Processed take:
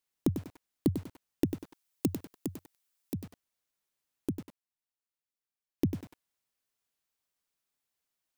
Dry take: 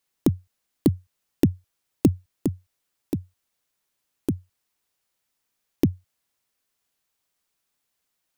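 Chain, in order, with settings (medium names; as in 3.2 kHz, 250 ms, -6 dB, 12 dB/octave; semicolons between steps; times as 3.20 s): 1.44–3.14 s: tilt EQ +2 dB/octave; 4.30–5.84 s: dip -11 dB, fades 0.40 s exponential; bit-crushed delay 97 ms, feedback 35%, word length 6-bit, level -8.5 dB; trim -8 dB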